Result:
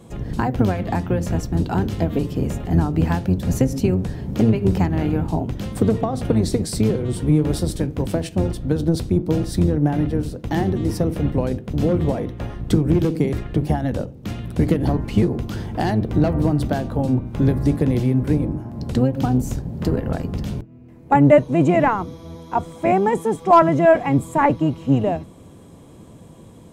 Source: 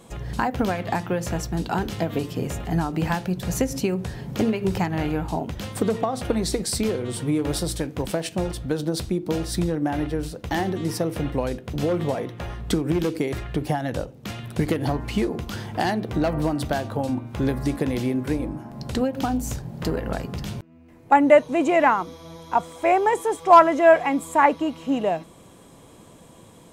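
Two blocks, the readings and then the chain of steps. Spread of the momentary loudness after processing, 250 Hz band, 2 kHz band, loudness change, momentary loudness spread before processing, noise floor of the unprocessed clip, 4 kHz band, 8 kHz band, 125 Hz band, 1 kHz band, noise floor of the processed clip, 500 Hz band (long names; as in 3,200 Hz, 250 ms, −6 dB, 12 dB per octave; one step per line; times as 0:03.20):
9 LU, +5.5 dB, −2.5 dB, +3.5 dB, 11 LU, −49 dBFS, −3.0 dB, −3.0 dB, +9.0 dB, −0.5 dB, −43 dBFS, +1.5 dB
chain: sub-octave generator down 1 octave, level +1 dB
parametric band 210 Hz +8 dB 3 octaves
level −3 dB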